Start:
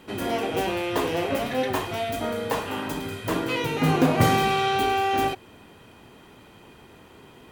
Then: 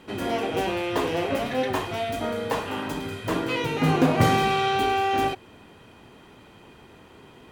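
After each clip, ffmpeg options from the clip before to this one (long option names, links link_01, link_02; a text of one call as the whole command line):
ffmpeg -i in.wav -af "highshelf=frequency=11000:gain=-9" out.wav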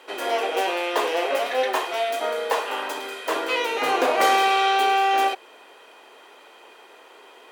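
ffmpeg -i in.wav -af "highpass=frequency=440:width=0.5412,highpass=frequency=440:width=1.3066,volume=4.5dB" out.wav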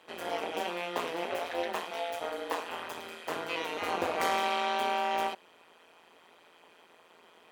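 ffmpeg -i in.wav -af "tremolo=f=170:d=0.947,volume=-6.5dB" out.wav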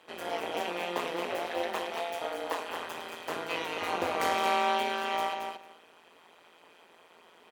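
ffmpeg -i in.wav -af "aecho=1:1:224|448|672:0.501|0.0752|0.0113" out.wav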